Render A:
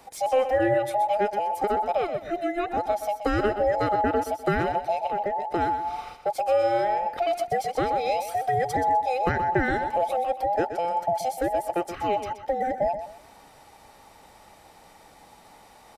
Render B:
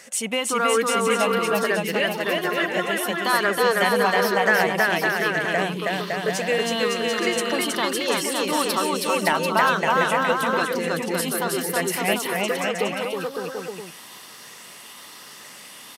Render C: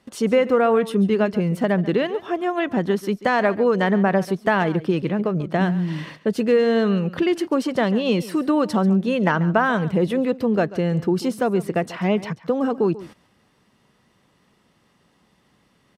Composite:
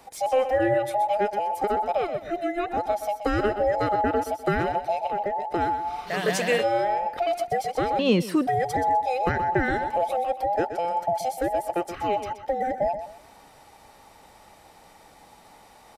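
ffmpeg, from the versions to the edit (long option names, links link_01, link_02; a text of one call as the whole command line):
ffmpeg -i take0.wav -i take1.wav -i take2.wav -filter_complex "[0:a]asplit=3[link_01][link_02][link_03];[link_01]atrim=end=6.15[link_04];[1:a]atrim=start=6.05:end=6.66[link_05];[link_02]atrim=start=6.56:end=7.992[link_06];[2:a]atrim=start=7.988:end=8.472[link_07];[link_03]atrim=start=8.468[link_08];[link_04][link_05]acrossfade=duration=0.1:curve1=tri:curve2=tri[link_09];[link_09][link_06]acrossfade=duration=0.1:curve1=tri:curve2=tri[link_10];[link_10][link_07]acrossfade=duration=0.004:curve1=hsin:curve2=hsin[link_11];[link_11][link_08]acrossfade=duration=0.004:curve1=hsin:curve2=hsin" out.wav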